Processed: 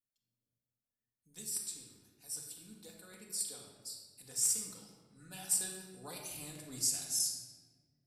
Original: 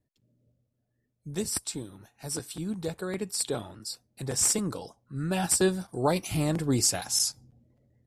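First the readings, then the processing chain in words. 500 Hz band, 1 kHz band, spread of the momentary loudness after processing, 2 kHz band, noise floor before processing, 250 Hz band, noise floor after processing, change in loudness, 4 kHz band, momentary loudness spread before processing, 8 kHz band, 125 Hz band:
-24.0 dB, -20.5 dB, 21 LU, -15.0 dB, -78 dBFS, -22.5 dB, under -85 dBFS, -7.5 dB, -9.0 dB, 15 LU, -6.0 dB, -23.0 dB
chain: pre-emphasis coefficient 0.9; shoebox room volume 1400 m³, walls mixed, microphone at 1.9 m; gain -8 dB

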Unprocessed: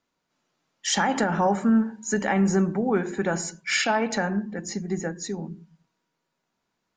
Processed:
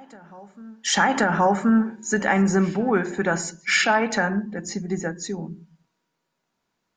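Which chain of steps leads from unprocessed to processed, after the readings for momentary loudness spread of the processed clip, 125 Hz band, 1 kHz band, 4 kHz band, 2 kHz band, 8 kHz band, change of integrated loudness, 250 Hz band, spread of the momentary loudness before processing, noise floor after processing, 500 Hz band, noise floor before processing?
12 LU, +1.5 dB, +4.0 dB, +2.5 dB, +5.5 dB, +1.5 dB, +3.0 dB, +1.5 dB, 11 LU, -78 dBFS, +2.0 dB, -79 dBFS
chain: reverse echo 1.077 s -23.5 dB; dynamic EQ 1500 Hz, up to +5 dB, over -36 dBFS, Q 0.97; gain +1.5 dB

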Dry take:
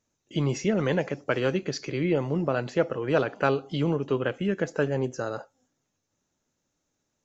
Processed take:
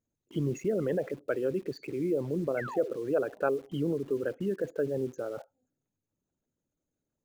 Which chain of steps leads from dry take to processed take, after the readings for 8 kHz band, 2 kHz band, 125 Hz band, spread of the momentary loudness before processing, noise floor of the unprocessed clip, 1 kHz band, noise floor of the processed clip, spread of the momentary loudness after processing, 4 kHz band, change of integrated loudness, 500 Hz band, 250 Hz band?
n/a, -9.5 dB, -8.0 dB, 5 LU, -80 dBFS, -8.5 dB, under -85 dBFS, 6 LU, under -10 dB, -4.5 dB, -3.0 dB, -5.0 dB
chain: formant sharpening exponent 2; Butterworth band-stop 5300 Hz, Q 2.2; in parallel at -7.5 dB: bit-crush 7-bit; on the sum: painted sound fall, 2.57–2.91, 330–2300 Hz -32 dBFS; gain -7.5 dB

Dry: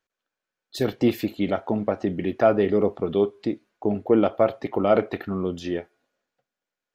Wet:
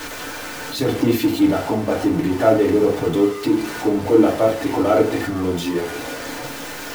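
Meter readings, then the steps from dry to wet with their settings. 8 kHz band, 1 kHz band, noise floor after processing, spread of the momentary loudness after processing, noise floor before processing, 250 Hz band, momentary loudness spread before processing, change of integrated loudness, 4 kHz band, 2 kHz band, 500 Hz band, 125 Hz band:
n/a, +5.5 dB, -31 dBFS, 13 LU, under -85 dBFS, +7.0 dB, 10 LU, +4.5 dB, +10.5 dB, +9.0 dB, +4.0 dB, +5.5 dB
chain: zero-crossing step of -24 dBFS; FDN reverb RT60 0.34 s, low-frequency decay 1.25×, high-frequency decay 0.55×, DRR -3 dB; gain -3.5 dB

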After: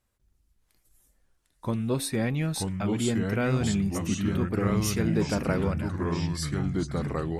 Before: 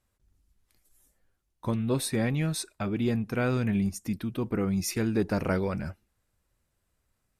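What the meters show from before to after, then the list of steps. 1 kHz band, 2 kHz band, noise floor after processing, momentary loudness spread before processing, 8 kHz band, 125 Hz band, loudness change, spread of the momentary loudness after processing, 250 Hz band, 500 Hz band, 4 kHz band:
+3.0 dB, +2.0 dB, -71 dBFS, 6 LU, +2.5 dB, +3.5 dB, +1.5 dB, 4 LU, +2.0 dB, +1.5 dB, +3.5 dB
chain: de-hum 92.5 Hz, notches 3; echoes that change speed 0.617 s, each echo -3 st, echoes 3

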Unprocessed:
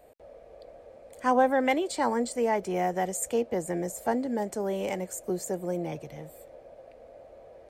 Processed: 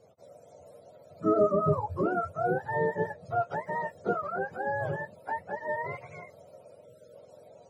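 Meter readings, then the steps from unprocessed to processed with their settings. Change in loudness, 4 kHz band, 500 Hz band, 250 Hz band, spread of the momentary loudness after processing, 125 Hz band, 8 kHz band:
-2.0 dB, under -15 dB, -1.0 dB, -4.5 dB, 12 LU, +4.0 dB, under -25 dB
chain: spectrum mirrored in octaves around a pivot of 570 Hz; spectral delete 6.85–7.15, 630–1300 Hz

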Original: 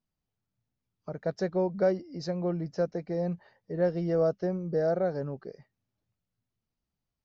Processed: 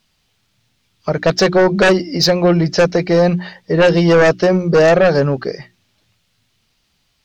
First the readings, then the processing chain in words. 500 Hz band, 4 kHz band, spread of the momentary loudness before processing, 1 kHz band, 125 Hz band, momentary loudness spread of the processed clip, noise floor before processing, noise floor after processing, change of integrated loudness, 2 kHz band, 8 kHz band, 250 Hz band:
+16.0 dB, +30.0 dB, 13 LU, +19.0 dB, +17.0 dB, 10 LU, under -85 dBFS, -64 dBFS, +16.5 dB, +27.0 dB, n/a, +16.5 dB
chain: bell 3400 Hz +14 dB 2.3 oct; notches 60/120/180/240/300/360 Hz; sine folder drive 7 dB, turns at -15 dBFS; gain +8.5 dB

